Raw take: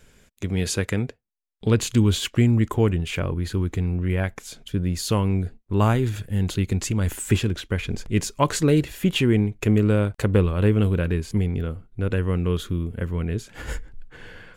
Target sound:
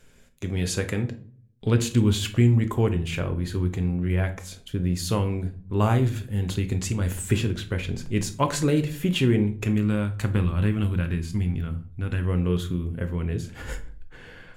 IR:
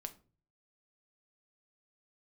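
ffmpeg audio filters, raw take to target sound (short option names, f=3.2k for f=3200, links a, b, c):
-filter_complex "[0:a]asettb=1/sr,asplit=3[a][b][c];[a]atrim=end=9.664[d];[b]atrim=start=9.66:end=12.25,asetpts=PTS-STARTPTS,afade=t=in:d=0.004:c=qsin,afade=t=out:st=2.586:d=0.004:c=qsin,equalizer=f=470:t=o:w=0.8:g=-11.5[e];[c]atrim=start=12.246[f];[d][e]acrossfade=d=0.004:c1=hsin:c2=qsin[g];[g][f]acrossfade=d=0.004:c1=qsin:c2=hsin[h];[1:a]atrim=start_sample=2205,asetrate=34839,aresample=44100[i];[h][i]afir=irnorm=-1:irlink=0"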